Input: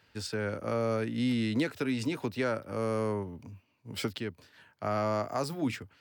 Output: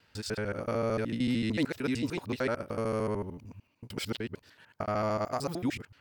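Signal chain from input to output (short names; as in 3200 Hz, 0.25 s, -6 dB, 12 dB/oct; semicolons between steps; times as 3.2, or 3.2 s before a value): local time reversal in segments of 75 ms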